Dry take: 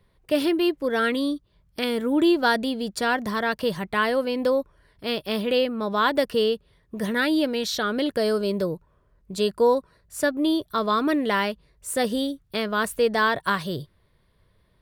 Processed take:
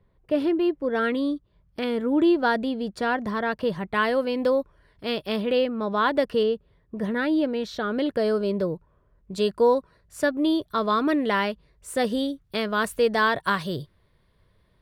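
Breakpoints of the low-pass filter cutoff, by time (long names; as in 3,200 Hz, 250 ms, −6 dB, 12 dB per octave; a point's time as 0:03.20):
low-pass filter 6 dB per octave
1,000 Hz
from 0:00.95 1,700 Hz
from 0:03.94 4,400 Hz
from 0:05.36 2,400 Hz
from 0:06.43 1,200 Hz
from 0:07.91 2,100 Hz
from 0:09.32 4,300 Hz
from 0:12.44 7,900 Hz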